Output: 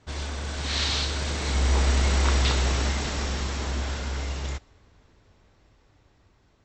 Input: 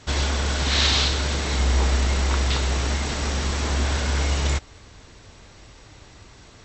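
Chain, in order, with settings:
source passing by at 0:02.34, 11 m/s, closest 9 metres
one half of a high-frequency compander decoder only

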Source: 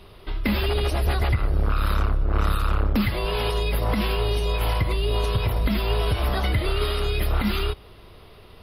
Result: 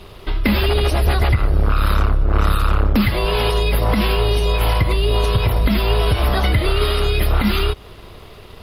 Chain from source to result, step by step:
in parallel at −1 dB: downward compressor, threshold −28 dBFS, peak gain reduction 11.5 dB
on the sum: dead-zone distortion −53 dBFS
level +4 dB

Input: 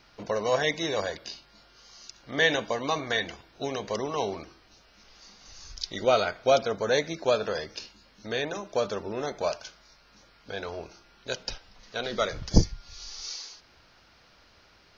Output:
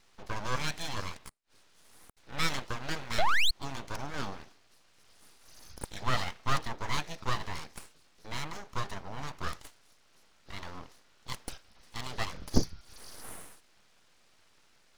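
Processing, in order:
0:01.29–0:02.17: gate with flip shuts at −38 dBFS, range −34 dB
0:03.18–0:03.51: sound drawn into the spectrogram rise 280–2,300 Hz −16 dBFS
full-wave rectification
level −4.5 dB

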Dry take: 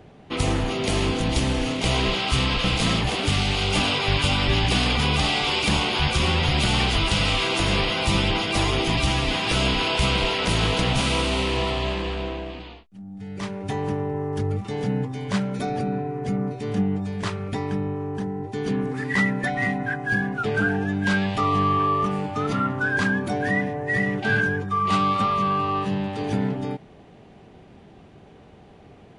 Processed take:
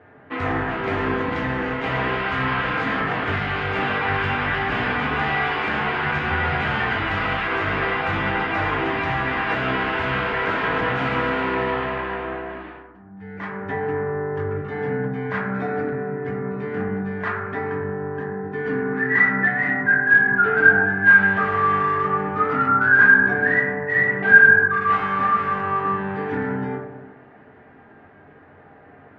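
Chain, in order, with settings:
high-pass filter 280 Hz 6 dB per octave
in parallel at −11 dB: wrap-around overflow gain 18.5 dB
on the sum: low-pass with resonance 1,700 Hz, resonance Q 3.4
convolution reverb RT60 1.2 s, pre-delay 5 ms, DRR −2.5 dB
level −5.5 dB

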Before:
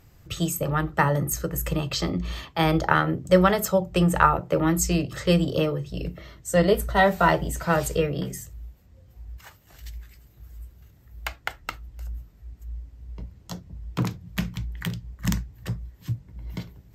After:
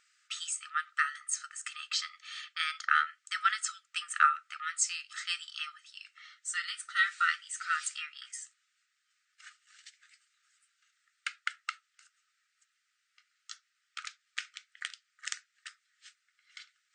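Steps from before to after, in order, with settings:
linear-phase brick-wall band-pass 1,200–9,700 Hz
level −3 dB

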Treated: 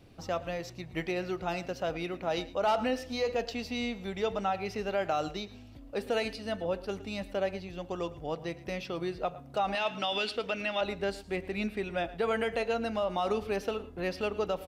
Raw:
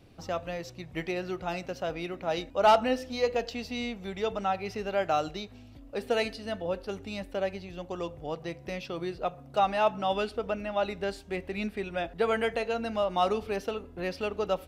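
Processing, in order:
0:09.75–0:10.81: meter weighting curve D
brickwall limiter −21 dBFS, peak gain reduction 9 dB
on a send: single-tap delay 112 ms −18 dB

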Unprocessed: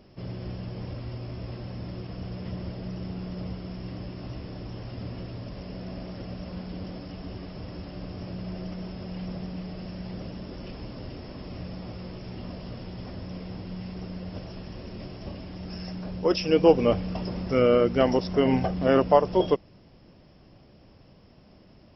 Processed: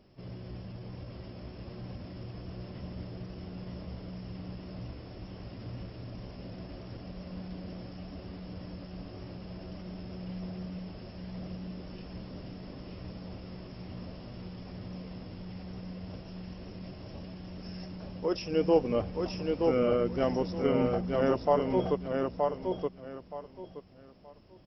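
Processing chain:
tempo change 0.89×
dynamic equaliser 3,500 Hz, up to −4 dB, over −43 dBFS, Q 0.8
repeating echo 923 ms, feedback 24%, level −3.5 dB
level −7 dB

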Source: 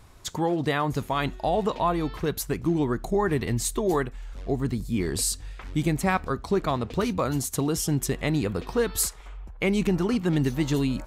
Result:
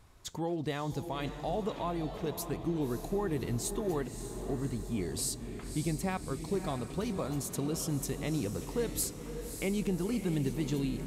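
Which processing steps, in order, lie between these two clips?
dynamic equaliser 1,400 Hz, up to −7 dB, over −42 dBFS, Q 0.97
feedback delay with all-pass diffusion 584 ms, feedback 57%, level −9 dB
level −8 dB

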